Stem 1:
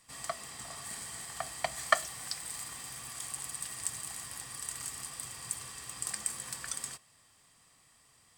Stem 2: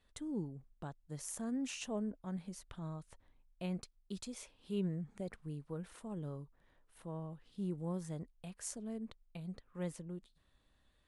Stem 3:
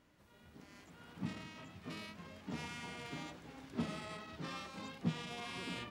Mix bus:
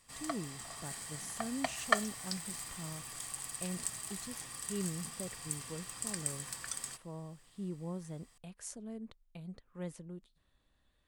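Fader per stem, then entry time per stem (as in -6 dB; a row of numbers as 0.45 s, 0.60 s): -2.5 dB, -1.5 dB, -18.0 dB; 0.00 s, 0.00 s, 0.00 s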